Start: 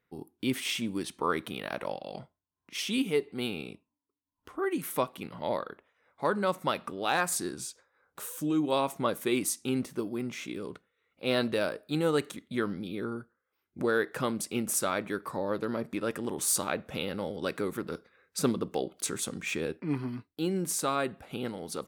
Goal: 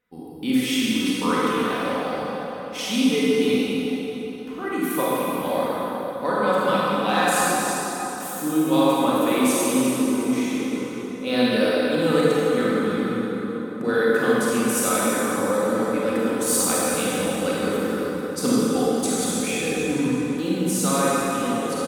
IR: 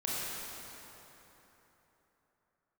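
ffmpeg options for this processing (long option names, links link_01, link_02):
-filter_complex "[0:a]aecho=1:1:4:0.52[link_01];[1:a]atrim=start_sample=2205,asetrate=38367,aresample=44100[link_02];[link_01][link_02]afir=irnorm=-1:irlink=0,volume=1.5dB"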